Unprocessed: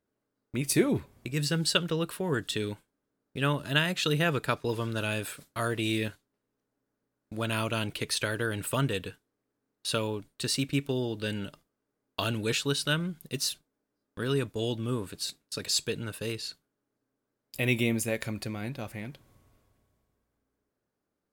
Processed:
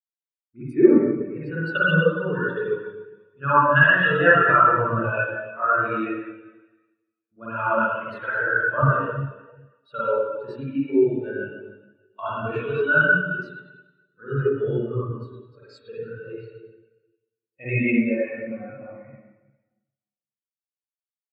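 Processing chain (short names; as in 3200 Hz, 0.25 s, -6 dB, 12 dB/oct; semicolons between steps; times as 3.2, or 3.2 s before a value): bell 1200 Hz +13.5 dB 2.4 oct; reverb RT60 2.8 s, pre-delay 44 ms, DRR -9 dB; spectral expander 2.5:1; gain -3.5 dB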